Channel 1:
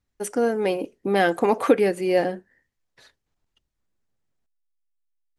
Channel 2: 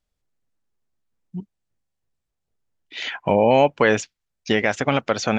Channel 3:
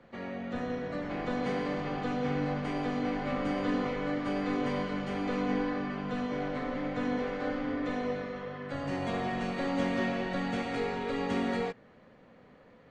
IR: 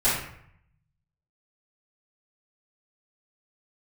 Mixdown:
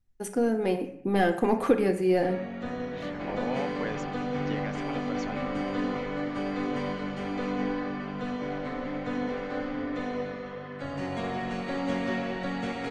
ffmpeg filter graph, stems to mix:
-filter_complex "[0:a]acontrast=46,lowshelf=f=210:g=12,volume=-13dB,asplit=2[a][b];[b]volume=-20dB[c];[1:a]volume=-19dB[d];[2:a]adelay=2100,volume=0.5dB[e];[3:a]atrim=start_sample=2205[f];[c][f]afir=irnorm=-1:irlink=0[g];[a][d][e][g]amix=inputs=4:normalize=0"

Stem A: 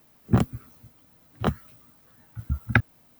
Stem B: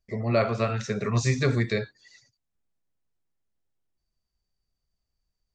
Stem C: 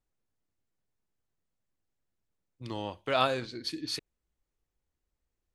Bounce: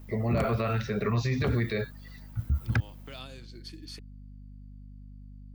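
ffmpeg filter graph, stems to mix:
-filter_complex "[0:a]lowshelf=f=120:g=10,aeval=exprs='0.708*sin(PI/2*1.41*val(0)/0.708)':c=same,volume=-7.5dB[a];[1:a]lowpass=f=4.4k:w=0.5412,lowpass=f=4.4k:w=1.3066,aeval=exprs='val(0)+0.00501*(sin(2*PI*50*n/s)+sin(2*PI*2*50*n/s)/2+sin(2*PI*3*50*n/s)/3+sin(2*PI*4*50*n/s)/4+sin(2*PI*5*50*n/s)/5)':c=same,volume=1dB[b];[2:a]bandreject=f=3.9k:w=12,acrossover=split=320|2800[c][d][e];[c]acompressor=threshold=-44dB:ratio=4[f];[d]acompressor=threshold=-45dB:ratio=4[g];[e]acompressor=threshold=-37dB:ratio=4[h];[f][g][h]amix=inputs=3:normalize=0,acrusher=bits=7:mode=log:mix=0:aa=0.000001,volume=-6.5dB[i];[a][b][i]amix=inputs=3:normalize=0,alimiter=limit=-19dB:level=0:latency=1:release=31"

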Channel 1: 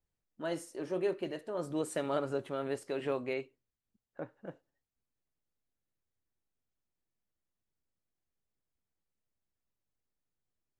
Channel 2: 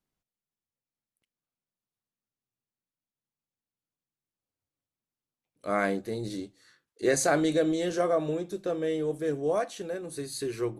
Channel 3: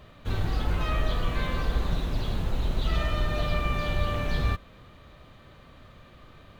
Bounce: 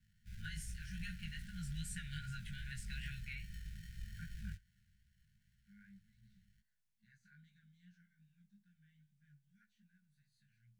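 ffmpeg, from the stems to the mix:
-filter_complex "[0:a]volume=3dB[a];[1:a]deesser=0.6,alimiter=limit=-17.5dB:level=0:latency=1:release=121,bandpass=f=380:t=q:w=0.75:csg=0,volume=-18.5dB[b];[2:a]acrusher=samples=36:mix=1:aa=0.000001,volume=-18dB[c];[a][b][c]amix=inputs=3:normalize=0,afftfilt=real='re*(1-between(b*sr/4096,220,1400))':imag='im*(1-between(b*sr/4096,220,1400))':win_size=4096:overlap=0.75,acrossover=split=310[d][e];[e]acompressor=threshold=-42dB:ratio=5[f];[d][f]amix=inputs=2:normalize=0,flanger=delay=16:depth=4.6:speed=2.5"

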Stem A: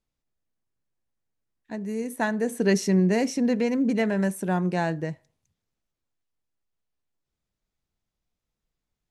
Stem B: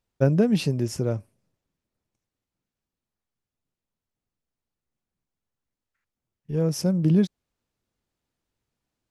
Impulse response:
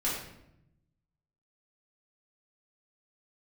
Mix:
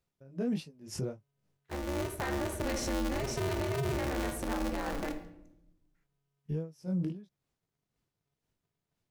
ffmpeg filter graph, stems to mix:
-filter_complex "[0:a]aeval=exprs='val(0)*sgn(sin(2*PI*140*n/s))':c=same,volume=-6.5dB,asplit=2[a][b];[b]volume=-13dB[c];[1:a]flanger=delay=18.5:depth=4:speed=1.5,alimiter=limit=-16.5dB:level=0:latency=1:release=163,aeval=exprs='val(0)*pow(10,-29*(0.5-0.5*cos(2*PI*2*n/s))/20)':c=same,volume=1dB[d];[2:a]atrim=start_sample=2205[e];[c][e]afir=irnorm=-1:irlink=0[f];[a][d][f]amix=inputs=3:normalize=0,alimiter=level_in=1.5dB:limit=-24dB:level=0:latency=1:release=51,volume=-1.5dB"

